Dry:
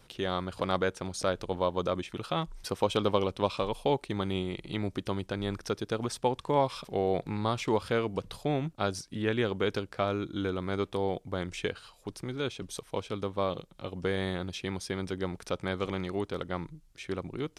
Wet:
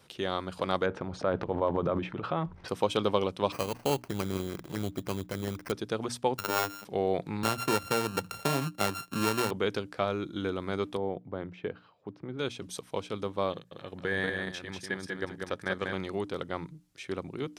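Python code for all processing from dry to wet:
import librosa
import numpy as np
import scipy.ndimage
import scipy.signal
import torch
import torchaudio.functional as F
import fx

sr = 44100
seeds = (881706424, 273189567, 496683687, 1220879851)

y = fx.chain(x, sr, fx.lowpass(hz=1600.0, slope=12),
    fx.transient(attack_db=1, sustain_db=12), at=(0.86, 2.68))
y = fx.chain(y, sr, fx.halfwave_gain(db=-7.0),
    fx.low_shelf(hz=120.0, db=8.0),
    fx.sample_hold(seeds[0], rate_hz=3600.0, jitter_pct=0), at=(3.52, 5.72))
y = fx.chain(y, sr, fx.sample_sort(block=32),
    fx.robotise(hz=100.0),
    fx.pre_swell(db_per_s=52.0), at=(6.38, 6.85))
y = fx.chain(y, sr, fx.sample_sort(block=32),
    fx.band_squash(depth_pct=70), at=(7.43, 9.51))
y = fx.chain(y, sr, fx.highpass(hz=84.0, slope=12),
    fx.spacing_loss(db_at_10k=44), at=(10.97, 12.39))
y = fx.chain(y, sr, fx.peak_eq(hz=1700.0, db=14.0, octaves=0.24),
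    fx.level_steps(step_db=10),
    fx.echo_single(ms=192, db=-4.0), at=(13.52, 15.93))
y = scipy.signal.sosfilt(scipy.signal.butter(2, 100.0, 'highpass', fs=sr, output='sos'), y)
y = fx.hum_notches(y, sr, base_hz=60, count=5)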